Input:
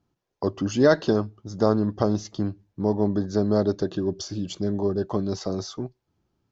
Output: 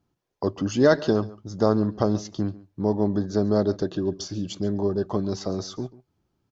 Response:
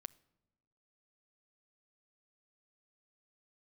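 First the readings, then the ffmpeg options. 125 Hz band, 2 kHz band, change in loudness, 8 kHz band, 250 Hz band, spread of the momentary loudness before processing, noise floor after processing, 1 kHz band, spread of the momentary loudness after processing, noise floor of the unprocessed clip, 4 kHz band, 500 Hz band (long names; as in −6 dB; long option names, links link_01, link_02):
0.0 dB, 0.0 dB, 0.0 dB, can't be measured, 0.0 dB, 11 LU, −76 dBFS, 0.0 dB, 11 LU, −79 dBFS, 0.0 dB, 0.0 dB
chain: -filter_complex "[0:a]asplit=2[link_01][link_02];[link_02]aecho=0:1:139:0.106[link_03];[link_01][link_03]amix=inputs=2:normalize=0"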